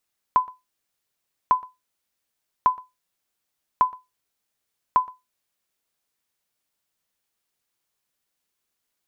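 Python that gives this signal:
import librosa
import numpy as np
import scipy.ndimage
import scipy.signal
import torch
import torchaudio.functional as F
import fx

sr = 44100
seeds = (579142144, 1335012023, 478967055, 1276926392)

y = fx.sonar_ping(sr, hz=1010.0, decay_s=0.2, every_s=1.15, pings=5, echo_s=0.12, echo_db=-24.0, level_db=-8.5)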